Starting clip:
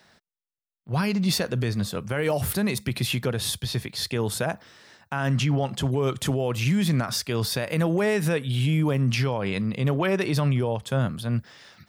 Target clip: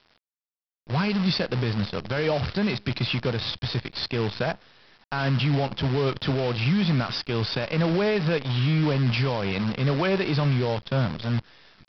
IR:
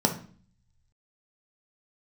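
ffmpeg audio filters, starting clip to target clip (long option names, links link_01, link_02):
-af "bandreject=frequency=1900:width=20,aresample=11025,acrusher=bits=6:dc=4:mix=0:aa=0.000001,aresample=44100"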